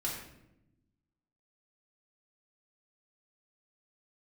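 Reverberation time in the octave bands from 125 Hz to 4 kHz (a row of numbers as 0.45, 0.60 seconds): 1.6, 1.5, 1.0, 0.70, 0.70, 0.55 seconds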